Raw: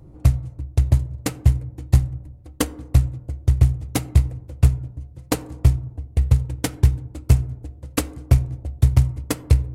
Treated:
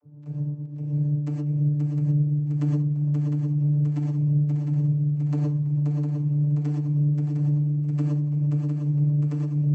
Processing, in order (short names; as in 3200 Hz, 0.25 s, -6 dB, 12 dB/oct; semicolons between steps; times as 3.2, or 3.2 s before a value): octaver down 2 oct, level +2 dB; low shelf 160 Hz +3.5 dB; harmonic-percussive split percussive -3 dB; bell 3600 Hz -7 dB 0.29 oct; reverse; compressor, threshold -16 dBFS, peak gain reduction 12.5 dB; reverse; crackle 12/s -29 dBFS; vocoder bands 32, saw 147 Hz; on a send: swung echo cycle 0.707 s, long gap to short 3:1, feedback 63%, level -4.5 dB; on the sum: non-linear reverb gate 0.14 s rising, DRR -0.5 dB; gain -5 dB